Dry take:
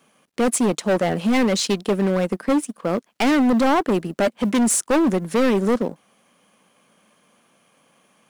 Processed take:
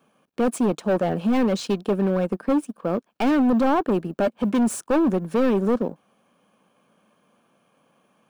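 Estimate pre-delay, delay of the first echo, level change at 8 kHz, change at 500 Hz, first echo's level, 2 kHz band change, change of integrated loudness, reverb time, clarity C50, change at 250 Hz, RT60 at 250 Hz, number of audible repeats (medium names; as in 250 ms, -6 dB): no reverb, no echo, -12.5 dB, -2.0 dB, no echo, -7.0 dB, -2.5 dB, no reverb, no reverb, -1.5 dB, no reverb, no echo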